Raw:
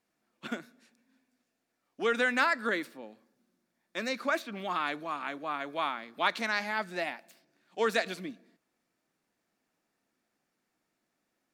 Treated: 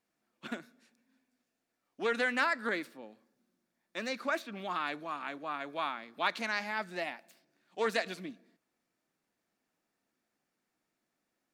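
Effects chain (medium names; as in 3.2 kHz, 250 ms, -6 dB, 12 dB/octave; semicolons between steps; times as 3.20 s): loudspeaker Doppler distortion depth 0.14 ms; trim -3 dB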